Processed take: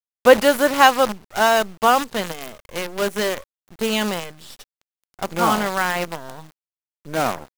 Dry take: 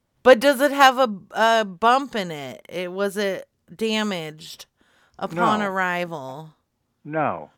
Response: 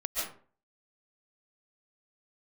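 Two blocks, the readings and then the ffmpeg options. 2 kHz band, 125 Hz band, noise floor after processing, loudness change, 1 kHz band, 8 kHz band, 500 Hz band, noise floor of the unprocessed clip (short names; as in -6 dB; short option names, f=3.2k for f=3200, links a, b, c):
+1.0 dB, 0.0 dB, under -85 dBFS, +1.0 dB, +1.0 dB, +7.0 dB, +1.0 dB, -73 dBFS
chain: -af "acrusher=bits=5:dc=4:mix=0:aa=0.000001,volume=1dB"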